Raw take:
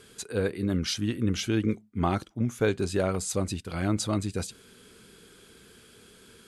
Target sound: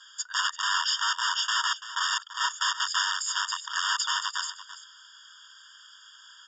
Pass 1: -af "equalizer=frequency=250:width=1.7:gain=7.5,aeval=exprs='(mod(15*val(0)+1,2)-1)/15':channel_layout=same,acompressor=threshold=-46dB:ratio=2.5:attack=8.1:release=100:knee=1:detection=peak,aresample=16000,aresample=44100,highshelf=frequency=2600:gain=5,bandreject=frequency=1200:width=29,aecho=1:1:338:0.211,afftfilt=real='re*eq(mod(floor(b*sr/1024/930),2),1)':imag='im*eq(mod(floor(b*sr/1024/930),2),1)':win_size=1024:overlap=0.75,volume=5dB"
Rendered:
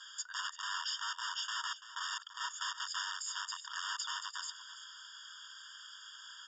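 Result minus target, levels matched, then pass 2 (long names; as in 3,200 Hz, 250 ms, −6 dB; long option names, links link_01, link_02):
downward compressor: peak gain reduction +13 dB
-af "equalizer=frequency=250:width=1.7:gain=7.5,aeval=exprs='(mod(15*val(0)+1,2)-1)/15':channel_layout=same,aresample=16000,aresample=44100,highshelf=frequency=2600:gain=5,bandreject=frequency=1200:width=29,aecho=1:1:338:0.211,afftfilt=real='re*eq(mod(floor(b*sr/1024/930),2),1)':imag='im*eq(mod(floor(b*sr/1024/930),2),1)':win_size=1024:overlap=0.75,volume=5dB"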